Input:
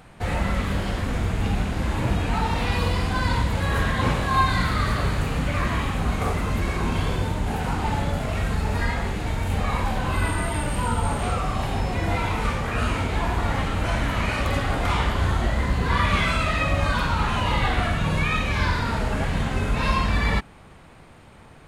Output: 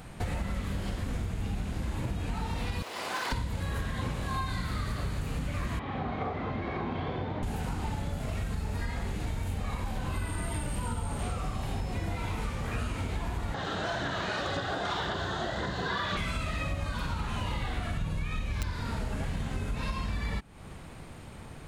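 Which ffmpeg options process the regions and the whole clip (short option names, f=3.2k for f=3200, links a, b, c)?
-filter_complex "[0:a]asettb=1/sr,asplit=3[a][b][c];[a]atrim=end=2.824[d];[b]atrim=start=2.82:end=3.32,asetpts=PTS-STARTPTS,afade=t=in:d=0.004:c=qsin,afade=t=out:st=0.496:d=0.004:c=qsin,highshelf=f=2.2k:g=-6,aeval=exprs='0.0891*(abs(mod(val(0)/0.0891+3,4)-2)-1)':c=same,highpass=590[e];[c]atrim=start=3.316[f];[d][e]acrossfade=d=0.004:c1=hsin:c2=qsin[g];[g][f]acrossfade=d=0.004:c1=qsin:c2=hsin,asettb=1/sr,asplit=3[h][i][j];[h]atrim=end=5.794[k];[i]atrim=start=5.79:end=7.43,asetpts=PTS-STARTPTS,afade=t=in:d=0.004:c=qsin,afade=t=out:st=1.636:d=0.004:c=qsin,highpass=140,equalizer=f=180:t=q:w=4:g=-8,equalizer=f=760:t=q:w=4:g=6,equalizer=f=1.5k:t=q:w=4:g=-3,equalizer=f=2.7k:t=q:w=4:g=-8,lowpass=f=3.2k:w=0.5412,lowpass=f=3.2k:w=1.3066,bandreject=f=910:w=27[l];[j]atrim=start=7.426[m];[k][l]acrossfade=d=0.004:c1=hsin:c2=qsin[n];[n][m]acrossfade=d=0.004:c1=qsin:c2=hsin,asettb=1/sr,asplit=3[o][p][q];[o]atrim=end=13.544[r];[p]atrim=start=13.54:end=16.17,asetpts=PTS-STARTPTS,afade=t=in:d=0.004:c=qsin,afade=t=out:st=2.626:d=0.004:c=qsin,highpass=170,equalizer=f=240:t=q:w=4:g=-10,equalizer=f=370:t=q:w=4:g=4,equalizer=f=700:t=q:w=4:g=6,equalizer=f=1.6k:t=q:w=4:g=8,equalizer=f=2.3k:t=q:w=4:g=-10,equalizer=f=3.7k:t=q:w=4:g=8,lowpass=f=6.8k:w=0.5412,lowpass=f=6.8k:w=1.3066,aphaser=in_gain=1:out_gain=1:delay=4.9:decay=0.28:speed=1.9:type=sinusoidal[s];[q]atrim=start=16.166[t];[r][s]acrossfade=d=0.004:c1=hsin:c2=qsin[u];[u][t]acrossfade=d=0.004:c1=qsin:c2=hsin,asettb=1/sr,asplit=3[v][w][x];[v]atrim=end=17.974[y];[w]atrim=start=17.97:end=18.7,asetpts=PTS-STARTPTS,afade=t=in:d=0.004:c=qsin,afade=t=out:st=0.726:d=0.004:c=qsin,aeval=exprs='(mod(3.55*val(0)+1,2)-1)/3.55':c=same,lowshelf=f=80:g=9.5[z];[x]atrim=start=18.696[aa];[y][z]acrossfade=d=0.004:c1=hsin:c2=qsin[ab];[ab][aa]acrossfade=d=0.004:c1=qsin:c2=hsin,lowshelf=f=440:g=7,acompressor=threshold=-28dB:ratio=6,highshelf=f=3.6k:g=8.5,volume=-2.5dB"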